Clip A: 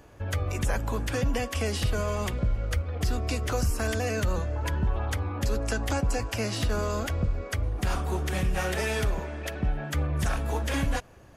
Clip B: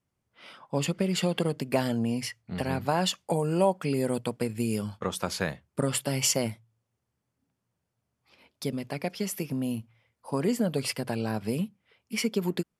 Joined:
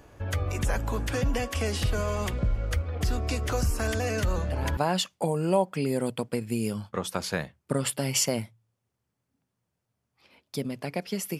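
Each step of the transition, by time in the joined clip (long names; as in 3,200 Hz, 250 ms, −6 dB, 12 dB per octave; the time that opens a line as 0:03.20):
clip A
0:04.18: mix in clip B from 0:02.26 0.59 s −7 dB
0:04.77: continue with clip B from 0:02.85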